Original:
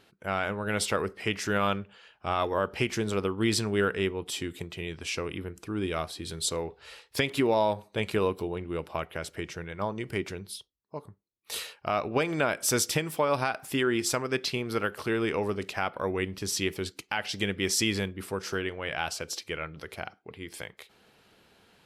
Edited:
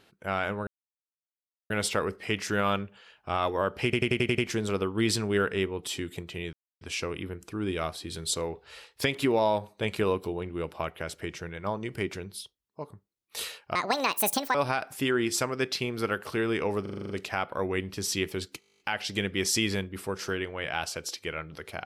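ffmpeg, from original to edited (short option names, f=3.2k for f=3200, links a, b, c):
-filter_complex "[0:a]asplit=28[a][b][c][d][e][f][g][h][i][j][k][l][m][n][o][p][q][r][s][t][u][v][w][x][y][z][aa][ab];[a]atrim=end=0.67,asetpts=PTS-STARTPTS,afade=t=out:st=0.666:d=0.004:c=hsin,apad=pad_dur=1.03[ac];[b]atrim=start=0.67:end=2.902,asetpts=PTS-STARTPTS,afade=t=in:d=0.004:c=hsin[ad];[c]atrim=start=2.808:end=2.902[ae];[d]atrim=start=2.808:end=2.902[af];[e]atrim=start=2.808:end=2.902[ag];[f]atrim=start=2.808:end=2.902[ah];[g]atrim=start=2.808:end=2.902[ai];[h]atrim=start=2.808:end=4.96,asetpts=PTS-STARTPTS,afade=t=out:st=2.148:d=0.004:c=hsin,apad=pad_dur=0.28[aj];[i]atrim=start=4.96:end=11.904,asetpts=PTS-STARTPTS,afade=t=in:d=0.004:c=hsin[ak];[j]atrim=start=11.9:end=13.27,asetpts=PTS-STARTPTS,asetrate=75852,aresample=44100,atrim=end_sample=35126,asetpts=PTS-STARTPTS[al];[k]atrim=start=13.266:end=15.582[am];[l]atrim=start=15.538:end=15.582[an];[m]atrim=start=15.538:end=15.582[ao];[n]atrim=start=15.538:end=15.582[ap];[o]atrim=start=15.538:end=15.582[aq];[p]atrim=start=15.538:end=15.582[ar];[q]atrim=start=15.538:end=15.582[as];[r]atrim=start=15.538:end=17.062[at];[s]atrim=start=17.038:end=17.062[au];[t]atrim=start=17.038:end=17.062[av];[u]atrim=start=17.038:end=17.062[aw];[v]atrim=start=17.038:end=17.062[ax];[w]atrim=start=17.038:end=17.062[ay];[x]atrim=start=17.038:end=17.062[az];[y]atrim=start=17.038:end=17.062[ba];[z]atrim=start=17.038:end=17.062[bb];[aa]atrim=start=17.038:end=17.062[bc];[ab]atrim=start=17.038[bd];[ac][ad]concat=n=2:v=0:a=1[be];[be][ae]acrossfade=d=0.004:c1=hsin:c2=hsin[bf];[bf][af]acrossfade=d=0.004:c1=hsin:c2=hsin[bg];[bg][ag]acrossfade=d=0.004:c1=hsin:c2=hsin[bh];[bh][ah]acrossfade=d=0.004:c1=hsin:c2=hsin[bi];[bi][ai]acrossfade=d=0.004:c1=hsin:c2=hsin[bj];[aj][ak]concat=n=2:v=0:a=1[bk];[bj][bk]acrossfade=d=0.004:c1=hsin:c2=hsin[bl];[bl][al]acrossfade=d=0.004:c1=hsin:c2=hsin[bm];[bm][am]acrossfade=d=0.004:c1=hsin:c2=hsin[bn];[bn][an]acrossfade=d=0.004:c1=hsin:c2=hsin[bo];[bo][ao]acrossfade=d=0.004:c1=hsin:c2=hsin[bp];[bp][ap]acrossfade=d=0.004:c1=hsin:c2=hsin[bq];[bq][aq]acrossfade=d=0.004:c1=hsin:c2=hsin[br];[br][ar]acrossfade=d=0.004:c1=hsin:c2=hsin[bs];[bs][as]acrossfade=d=0.004:c1=hsin:c2=hsin[bt];[bt][at]acrossfade=d=0.004:c1=hsin:c2=hsin[bu];[bu][au]acrossfade=d=0.004:c1=hsin:c2=hsin[bv];[bv][av]acrossfade=d=0.004:c1=hsin:c2=hsin[bw];[bw][aw]acrossfade=d=0.004:c1=hsin:c2=hsin[bx];[bx][ax]acrossfade=d=0.004:c1=hsin:c2=hsin[by];[by][ay]acrossfade=d=0.004:c1=hsin:c2=hsin[bz];[bz][az]acrossfade=d=0.004:c1=hsin:c2=hsin[ca];[ca][ba]acrossfade=d=0.004:c1=hsin:c2=hsin[cb];[cb][bb]acrossfade=d=0.004:c1=hsin:c2=hsin[cc];[cc][bc]acrossfade=d=0.004:c1=hsin:c2=hsin[cd];[cd][bd]acrossfade=d=0.004:c1=hsin:c2=hsin"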